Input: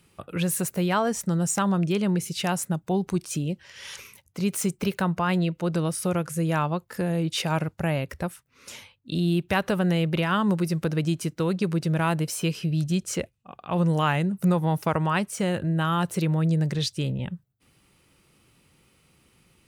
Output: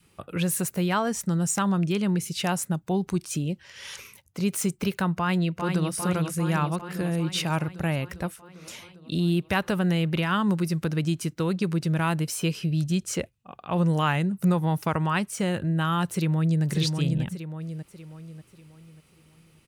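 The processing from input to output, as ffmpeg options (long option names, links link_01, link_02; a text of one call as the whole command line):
ffmpeg -i in.wav -filter_complex "[0:a]asplit=2[link_01][link_02];[link_02]afade=type=in:start_time=5.15:duration=0.01,afade=type=out:start_time=5.95:duration=0.01,aecho=0:1:400|800|1200|1600|2000|2400|2800|3200|3600|4000|4400|4800:0.530884|0.371619|0.260133|0.182093|0.127465|0.0892257|0.062458|0.0437206|0.0306044|0.0214231|0.0149962|0.0104973[link_03];[link_01][link_03]amix=inputs=2:normalize=0,asplit=2[link_04][link_05];[link_05]afade=type=in:start_time=16.07:duration=0.01,afade=type=out:start_time=16.64:duration=0.01,aecho=0:1:590|1180|1770|2360|2950:0.630957|0.252383|0.100953|0.0403813|0.0161525[link_06];[link_04][link_06]amix=inputs=2:normalize=0,adynamicequalizer=threshold=0.00891:dfrequency=560:dqfactor=1.3:tfrequency=560:tqfactor=1.3:attack=5:release=100:ratio=0.375:range=2.5:mode=cutabove:tftype=bell" out.wav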